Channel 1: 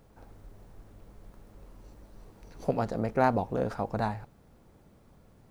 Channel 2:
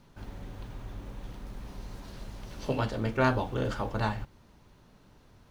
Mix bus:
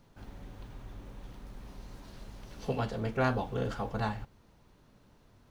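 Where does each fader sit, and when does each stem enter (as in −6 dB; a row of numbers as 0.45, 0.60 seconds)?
−10.0, −4.5 decibels; 0.00, 0.00 seconds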